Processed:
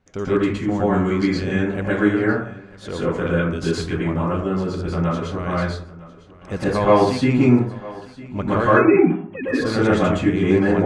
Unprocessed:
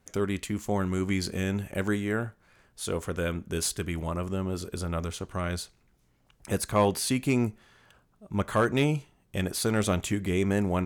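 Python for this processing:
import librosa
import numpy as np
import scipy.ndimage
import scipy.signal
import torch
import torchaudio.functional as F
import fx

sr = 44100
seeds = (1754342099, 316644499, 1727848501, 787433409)

y = fx.sine_speech(x, sr, at=(8.68, 9.49))
y = fx.air_absorb(y, sr, metres=140.0)
y = y + 10.0 ** (-19.5 / 20.0) * np.pad(y, (int(953 * sr / 1000.0), 0))[:len(y)]
y = fx.rev_plate(y, sr, seeds[0], rt60_s=0.57, hf_ratio=0.35, predelay_ms=105, drr_db=-8.5)
y = y * 10.0 ** (1.0 / 20.0)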